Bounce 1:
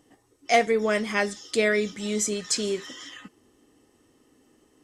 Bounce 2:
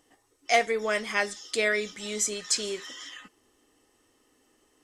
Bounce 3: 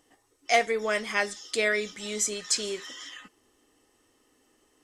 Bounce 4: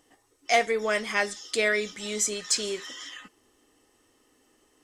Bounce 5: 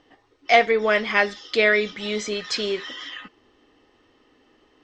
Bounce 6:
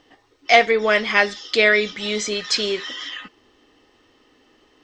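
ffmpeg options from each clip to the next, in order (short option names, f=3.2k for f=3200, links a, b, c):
-af "equalizer=f=160:w=0.44:g=-11"
-af anull
-af "asoftclip=type=tanh:threshold=-11.5dB,volume=1.5dB"
-af "lowpass=f=4.3k:w=0.5412,lowpass=f=4.3k:w=1.3066,volume=6.5dB"
-af "highshelf=f=3.7k:g=7.5,volume=1.5dB"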